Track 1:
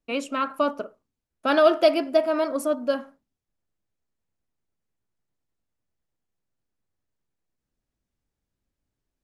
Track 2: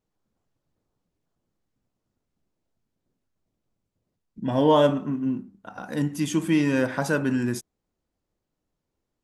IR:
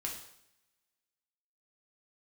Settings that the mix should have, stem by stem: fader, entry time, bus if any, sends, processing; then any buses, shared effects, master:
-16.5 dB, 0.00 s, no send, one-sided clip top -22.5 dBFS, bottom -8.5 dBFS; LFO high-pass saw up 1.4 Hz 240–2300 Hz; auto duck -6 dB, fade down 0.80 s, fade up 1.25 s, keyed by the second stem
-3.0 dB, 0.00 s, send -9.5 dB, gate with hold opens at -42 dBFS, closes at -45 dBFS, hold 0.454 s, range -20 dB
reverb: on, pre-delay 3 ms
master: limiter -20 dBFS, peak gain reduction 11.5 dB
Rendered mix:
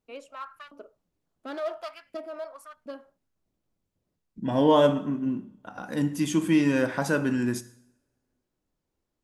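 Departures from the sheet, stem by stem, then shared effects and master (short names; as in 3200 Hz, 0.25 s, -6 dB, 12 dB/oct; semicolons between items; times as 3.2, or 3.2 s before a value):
stem 2: missing gate with hold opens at -42 dBFS, closes at -45 dBFS, hold 0.454 s, range -20 dB; master: missing limiter -20 dBFS, peak gain reduction 11.5 dB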